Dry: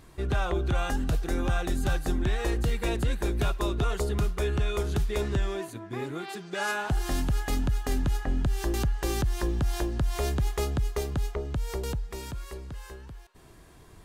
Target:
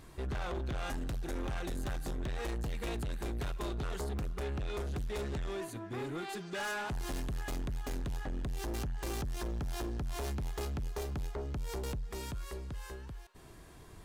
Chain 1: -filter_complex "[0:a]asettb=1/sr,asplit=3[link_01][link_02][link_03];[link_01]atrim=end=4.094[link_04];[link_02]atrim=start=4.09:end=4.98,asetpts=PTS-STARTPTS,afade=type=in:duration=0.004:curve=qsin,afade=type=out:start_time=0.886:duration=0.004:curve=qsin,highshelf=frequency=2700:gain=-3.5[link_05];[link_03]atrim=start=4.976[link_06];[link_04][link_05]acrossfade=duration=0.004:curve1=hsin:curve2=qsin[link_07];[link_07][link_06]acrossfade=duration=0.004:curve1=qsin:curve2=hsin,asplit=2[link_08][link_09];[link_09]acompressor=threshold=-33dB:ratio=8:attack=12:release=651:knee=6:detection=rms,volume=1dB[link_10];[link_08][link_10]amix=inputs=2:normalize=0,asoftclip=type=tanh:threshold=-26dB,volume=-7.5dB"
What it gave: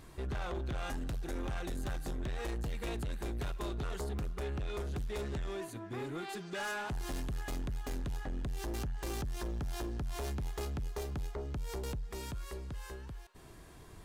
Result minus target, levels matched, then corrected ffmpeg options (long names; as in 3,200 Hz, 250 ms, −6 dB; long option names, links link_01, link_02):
downward compressor: peak gain reduction +7 dB
-filter_complex "[0:a]asettb=1/sr,asplit=3[link_01][link_02][link_03];[link_01]atrim=end=4.094[link_04];[link_02]atrim=start=4.09:end=4.98,asetpts=PTS-STARTPTS,afade=type=in:duration=0.004:curve=qsin,afade=type=out:start_time=0.886:duration=0.004:curve=qsin,highshelf=frequency=2700:gain=-3.5[link_05];[link_03]atrim=start=4.976[link_06];[link_04][link_05]acrossfade=duration=0.004:curve1=hsin:curve2=qsin[link_07];[link_07][link_06]acrossfade=duration=0.004:curve1=qsin:curve2=hsin,asplit=2[link_08][link_09];[link_09]acompressor=threshold=-24.5dB:ratio=8:attack=12:release=651:knee=6:detection=rms,volume=1dB[link_10];[link_08][link_10]amix=inputs=2:normalize=0,asoftclip=type=tanh:threshold=-26dB,volume=-7.5dB"